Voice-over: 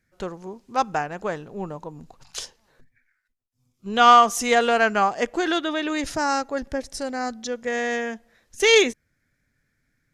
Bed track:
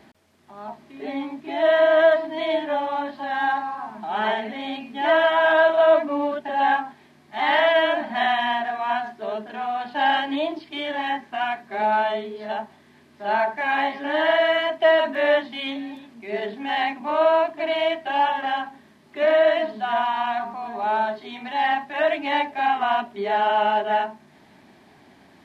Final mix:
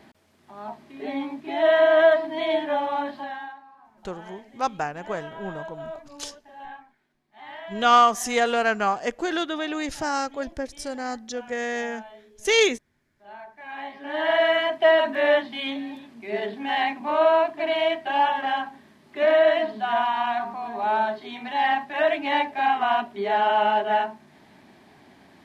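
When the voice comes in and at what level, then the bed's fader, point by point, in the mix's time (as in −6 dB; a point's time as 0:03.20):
3.85 s, −3.0 dB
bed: 0:03.18 −0.5 dB
0:03.57 −21 dB
0:13.43 −21 dB
0:14.41 −0.5 dB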